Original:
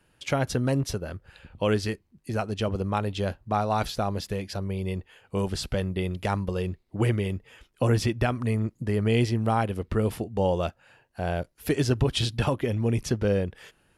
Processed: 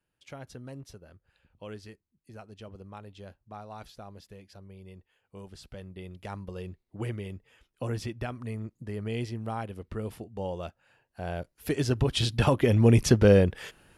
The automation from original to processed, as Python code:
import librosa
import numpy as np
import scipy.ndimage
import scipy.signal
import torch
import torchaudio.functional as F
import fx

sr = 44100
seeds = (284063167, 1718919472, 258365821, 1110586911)

y = fx.gain(x, sr, db=fx.line((5.5, -18.0), (6.59, -10.0), (10.57, -10.0), (12.15, -1.5), (12.81, 6.0)))